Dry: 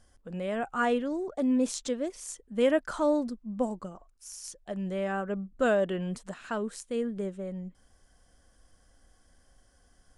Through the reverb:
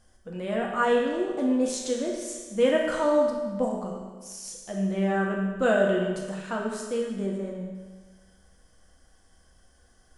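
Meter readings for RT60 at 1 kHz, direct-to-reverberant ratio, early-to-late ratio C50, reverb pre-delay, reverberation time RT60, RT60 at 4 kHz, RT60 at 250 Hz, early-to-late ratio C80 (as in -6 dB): 1.4 s, -2.0 dB, 2.5 dB, 5 ms, 1.4 s, 1.3 s, 1.4 s, 4.5 dB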